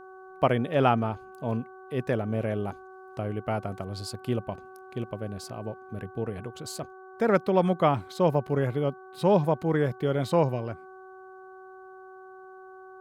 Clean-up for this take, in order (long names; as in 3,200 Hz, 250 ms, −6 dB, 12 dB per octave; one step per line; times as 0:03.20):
hum removal 376.8 Hz, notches 4